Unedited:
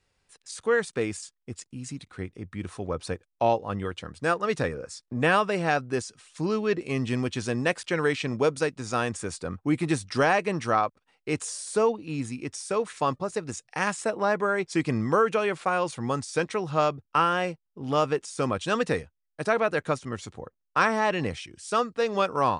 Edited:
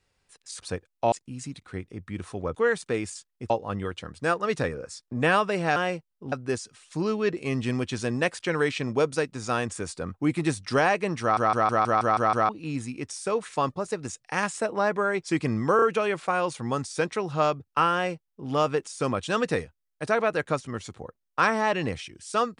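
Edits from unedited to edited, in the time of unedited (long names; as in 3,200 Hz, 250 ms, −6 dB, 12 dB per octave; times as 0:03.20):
0:00.62–0:01.57: swap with 0:03.00–0:03.50
0:10.65: stutter in place 0.16 s, 8 plays
0:15.20: stutter 0.03 s, 3 plays
0:17.31–0:17.87: duplicate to 0:05.76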